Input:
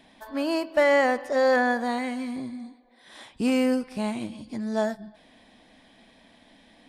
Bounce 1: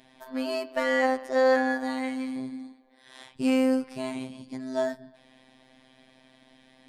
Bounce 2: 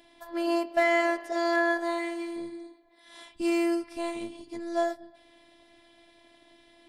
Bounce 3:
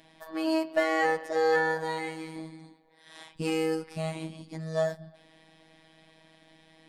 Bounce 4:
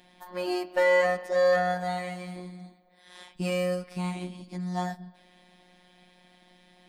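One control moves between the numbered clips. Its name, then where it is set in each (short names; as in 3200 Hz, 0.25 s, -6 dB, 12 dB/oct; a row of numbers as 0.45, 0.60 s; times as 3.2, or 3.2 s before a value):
robotiser, frequency: 130, 340, 160, 180 Hz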